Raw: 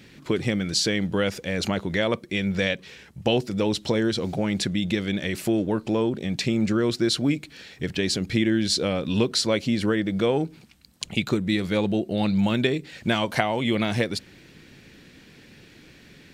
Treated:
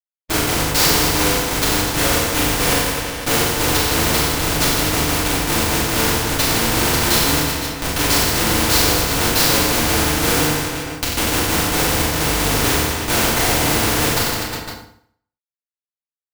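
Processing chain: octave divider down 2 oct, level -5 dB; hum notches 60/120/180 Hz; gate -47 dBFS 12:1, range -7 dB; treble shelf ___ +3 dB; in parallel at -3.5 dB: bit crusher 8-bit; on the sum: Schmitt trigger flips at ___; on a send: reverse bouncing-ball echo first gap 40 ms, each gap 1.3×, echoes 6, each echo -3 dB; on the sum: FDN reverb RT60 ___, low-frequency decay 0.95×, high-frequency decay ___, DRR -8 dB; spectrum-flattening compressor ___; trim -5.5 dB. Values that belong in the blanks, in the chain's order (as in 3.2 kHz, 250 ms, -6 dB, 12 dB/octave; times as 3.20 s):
2 kHz, -16.5 dBFS, 0.6 s, 0.85×, 2:1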